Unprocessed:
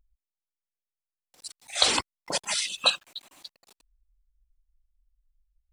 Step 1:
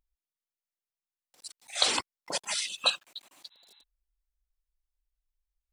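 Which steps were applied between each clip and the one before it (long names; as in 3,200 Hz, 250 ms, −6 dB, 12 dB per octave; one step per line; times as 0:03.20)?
healed spectral selection 0:03.53–0:03.80, 780–4,100 Hz before
low-shelf EQ 130 Hz −10.5 dB
level −3.5 dB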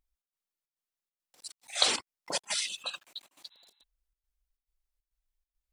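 gate pattern "xx.xxx.x" 138 BPM −12 dB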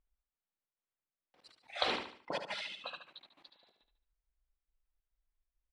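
high-frequency loss of the air 380 metres
on a send: repeating echo 73 ms, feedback 39%, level −8 dB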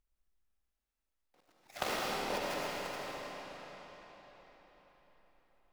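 gap after every zero crossing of 0.17 ms
convolution reverb RT60 4.7 s, pre-delay 60 ms, DRR −4.5 dB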